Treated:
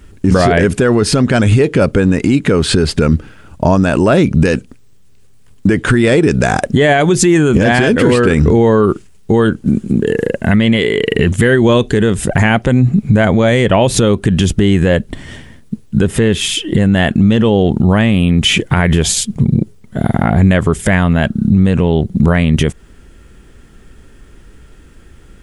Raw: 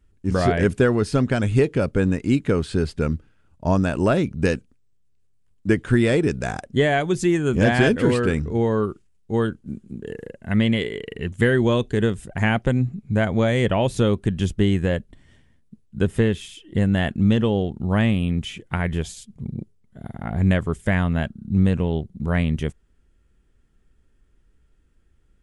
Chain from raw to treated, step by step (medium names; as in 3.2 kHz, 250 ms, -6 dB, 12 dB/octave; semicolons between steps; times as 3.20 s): bass shelf 96 Hz -7 dB; compression 6:1, threshold -27 dBFS, peak gain reduction 13.5 dB; loudness maximiser +26.5 dB; trim -1 dB